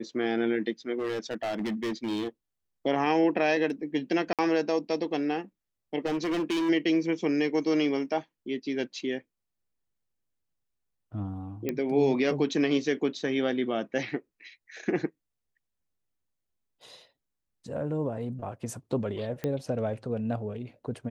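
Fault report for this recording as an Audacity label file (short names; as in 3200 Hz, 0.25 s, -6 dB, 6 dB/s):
0.990000	2.290000	clipped -27 dBFS
4.330000	4.390000	gap 57 ms
6.050000	6.700000	clipped -25.5 dBFS
11.690000	11.690000	pop -16 dBFS
19.440000	19.440000	pop -18 dBFS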